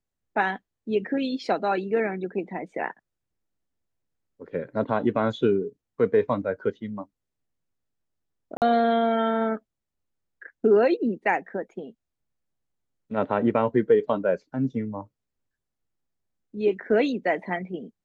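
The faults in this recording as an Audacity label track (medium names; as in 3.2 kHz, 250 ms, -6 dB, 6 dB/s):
8.570000	8.620000	dropout 48 ms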